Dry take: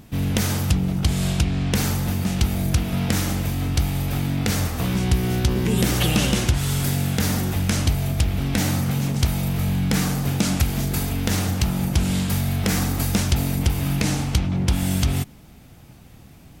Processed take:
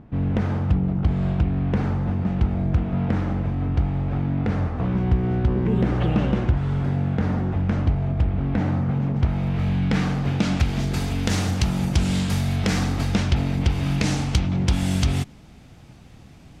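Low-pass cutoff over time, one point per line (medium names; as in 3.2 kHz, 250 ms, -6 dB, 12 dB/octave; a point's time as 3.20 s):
9.15 s 1.3 kHz
9.68 s 3 kHz
10.27 s 3 kHz
11.28 s 7.1 kHz
12.42 s 7.1 kHz
13.44 s 3.2 kHz
14.14 s 6.9 kHz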